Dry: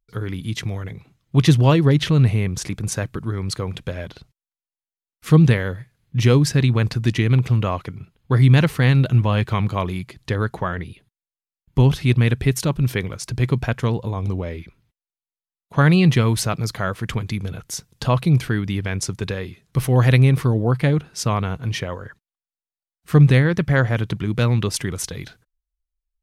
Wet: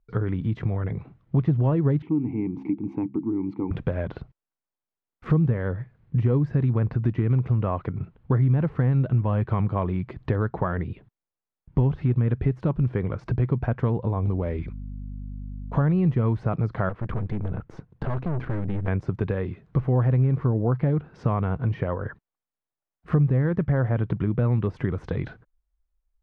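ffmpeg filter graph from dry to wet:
-filter_complex "[0:a]asettb=1/sr,asplit=3[a][b][c];[a]atrim=end=2.024[d];[b]atrim=start=2.02:end=3.71,asetpts=PTS-STARTPTS,afade=t=in:d=0.004:c=qsin,afade=t=out:st=1.686:d=0.004:c=qsin,asplit=3[e][f][g];[e]bandpass=f=300:t=q:w=8,volume=0dB[h];[f]bandpass=f=870:t=q:w=8,volume=-6dB[i];[g]bandpass=f=2.24k:t=q:w=8,volume=-9dB[j];[h][i][j]amix=inputs=3:normalize=0,equalizer=f=240:t=o:w=2.7:g=9,bandreject=f=67.02:t=h:w=4,bandreject=f=134.04:t=h:w=4,bandreject=f=201.06:t=h:w=4,bandreject=f=268.08:t=h:w=4,bandreject=f=335.1:t=h:w=4[k];[c]atrim=start=3.706[l];[d][k]acrossfade=d=0.004:c1=hsin:c2=qsin[m];[m][l]acrossfade=d=0.004:c1=qsin:c2=hsin,asettb=1/sr,asplit=3[n][o][p];[n]atrim=end=14.264[q];[o]atrim=start=14.26:end=16.19,asetpts=PTS-STARTPTS,afade=t=in:d=0.004:c=qsin,afade=t=out:st=1.926:d=0.004:c=qsin,aemphasis=mode=production:type=50fm,agate=range=-15dB:threshold=-49dB:ratio=16:release=100:detection=peak,aeval=exprs='val(0)+0.00891*(sin(2*PI*50*n/s)+sin(2*PI*2*50*n/s)/2+sin(2*PI*3*50*n/s)/3+sin(2*PI*4*50*n/s)/4+sin(2*PI*5*50*n/s)/5)':c=same[r];[p]atrim=start=16.186[s];[q][r]acrossfade=d=0.004:c1=hsin:c2=qsin[t];[t][s]acrossfade=d=0.004:c1=qsin:c2=hsin,asettb=1/sr,asplit=3[u][v][w];[u]atrim=end=16.894[x];[v]atrim=start=16.89:end=18.88,asetpts=PTS-STARTPTS,afade=t=in:d=0.004:c=qsin,afade=t=out:st=1.986:d=0.004:c=qsin,equalizer=f=8.9k:w=0.32:g=-10,aeval=exprs='(tanh(28.2*val(0)+0.75)-tanh(0.75))/28.2':c=same[y];[w]atrim=start=18.876[z];[x][y]acrossfade=d=0.004:c1=hsin:c2=qsin[aa];[aa][z]acrossfade=d=0.004:c1=qsin:c2=hsin,deesser=0.9,lowpass=1.3k,acompressor=threshold=-31dB:ratio=3,volume=7.5dB"

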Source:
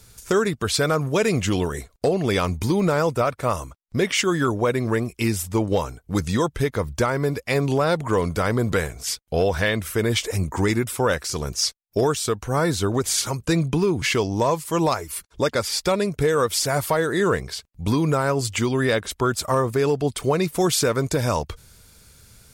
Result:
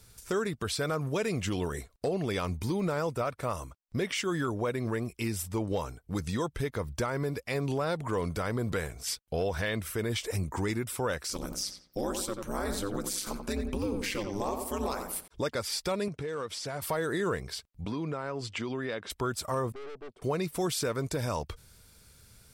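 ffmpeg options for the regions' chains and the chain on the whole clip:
-filter_complex "[0:a]asettb=1/sr,asplit=3[a][b][c];[a]atrim=end=11.334[d];[b]atrim=start=11.33:end=15.28,asetpts=PTS-STARTPTS,afade=t=in:d=0.004:c=qsin,afade=t=out:st=3.946:d=0.004:c=qsin,highshelf=f=11k:g=12,aeval=exprs='val(0)*sin(2*PI*100*n/s)':c=same,asplit=2[e][f];[f]adelay=88,lowpass=f=2.1k:p=1,volume=-7dB,asplit=2[g][h];[h]adelay=88,lowpass=f=2.1k:p=1,volume=0.4,asplit=2[i][j];[j]adelay=88,lowpass=f=2.1k:p=1,volume=0.4,asplit=2[k][l];[l]adelay=88,lowpass=f=2.1k:p=1,volume=0.4,asplit=2[m][n];[n]adelay=88,lowpass=f=2.1k:p=1,volume=0.4[o];[e][g][i][k][m][o]amix=inputs=6:normalize=0,atrim=end_sample=174195[p];[c]atrim=start=15.276[q];[d][p]acrossfade=d=0.004:c1=hsin:c2=qsin[r];[r][q]acrossfade=d=0.004:c1=qsin:c2=hsin,asettb=1/sr,asplit=3[s][t][u];[s]atrim=end=16.084[v];[t]atrim=start=16.08:end=16.82,asetpts=PTS-STARTPTS,afade=t=in:d=0.004:c=qsin,afade=t=out:st=0.736:d=0.004:c=qsin,acompressor=threshold=-24dB:ratio=10:attack=3.2:release=140:knee=1:detection=peak,volume=22.5dB,asoftclip=hard,volume=-22.5dB,highpass=110,lowpass=6.4k[w];[u]atrim=start=16.816[x];[v][w]acrossfade=d=0.004:c1=hsin:c2=qsin[y];[y][x]acrossfade=d=0.004:c1=qsin:c2=hsin,asettb=1/sr,asplit=3[z][aa][ab];[z]atrim=end=17.854[ac];[aa]atrim=start=17.85:end=19.1,asetpts=PTS-STARTPTS,afade=t=in:d=0.004:c=qsin,afade=t=out:st=1.246:d=0.004:c=qsin,highpass=150,lowpass=4.4k,acompressor=threshold=-24dB:ratio=4:attack=3.2:release=140:knee=1:detection=peak[ad];[ab]atrim=start=19.096[ae];[ac][ad]acrossfade=d=0.004:c1=hsin:c2=qsin[af];[af][ae]acrossfade=d=0.004:c1=qsin:c2=hsin,asettb=1/sr,asplit=3[ag][ah][ai];[ag]atrim=end=19.724[aj];[ah]atrim=start=19.72:end=20.22,asetpts=PTS-STARTPTS,afade=t=in:d=0.004:c=qsin,afade=t=out:st=0.496:d=0.004:c=qsin,bandpass=f=390:t=q:w=1.8,aeval=exprs='(tanh(56.2*val(0)+0.75)-tanh(0.75))/56.2':c=same[ak];[ai]atrim=start=20.216[al];[aj][ak]acrossfade=d=0.004:c1=hsin:c2=qsin[am];[am][al]acrossfade=d=0.004:c1=qsin:c2=hsin,bandreject=f=6.7k:w=16,alimiter=limit=-15.5dB:level=0:latency=1:release=118,volume=-6.5dB"

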